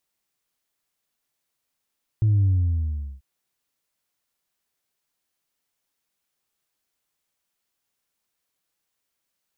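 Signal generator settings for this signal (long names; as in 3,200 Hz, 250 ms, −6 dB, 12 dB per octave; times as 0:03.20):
bass drop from 110 Hz, over 0.99 s, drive 0.5 dB, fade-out 0.77 s, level −16 dB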